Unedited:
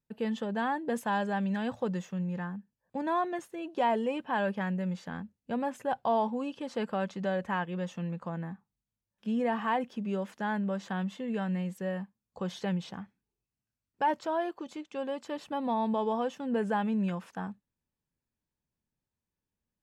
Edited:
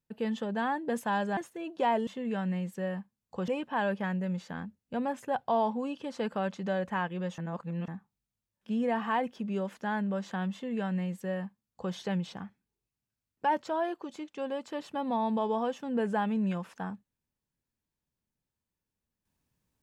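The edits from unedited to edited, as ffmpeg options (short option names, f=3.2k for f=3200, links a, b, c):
-filter_complex "[0:a]asplit=6[a][b][c][d][e][f];[a]atrim=end=1.372[g];[b]atrim=start=3.348:end=4.052[h];[c]atrim=start=11.098:end=12.512[i];[d]atrim=start=4.048:end=7.952[j];[e]atrim=start=7.948:end=8.452,asetpts=PTS-STARTPTS,areverse[k];[f]atrim=start=8.448[l];[g][h]acrossfade=d=0.004:c1=hsin:c2=hsin[m];[m][i]acrossfade=d=0.004:c1=hsin:c2=hsin[n];[n][j]acrossfade=d=0.004:c1=hsin:c2=hsin[o];[o][k]acrossfade=d=0.004:c1=hsin:c2=hsin[p];[p][l]acrossfade=d=0.004:c1=hsin:c2=hsin"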